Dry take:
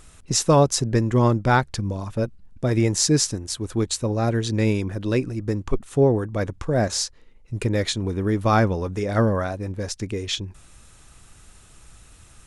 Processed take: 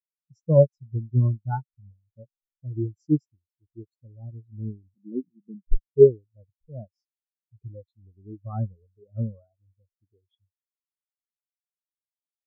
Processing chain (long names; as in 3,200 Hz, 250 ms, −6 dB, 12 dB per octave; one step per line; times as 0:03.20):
0:04.94–0:05.68: low shelf with overshoot 120 Hz −11.5 dB, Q 3
every bin expanded away from the loudest bin 4 to 1
level +2 dB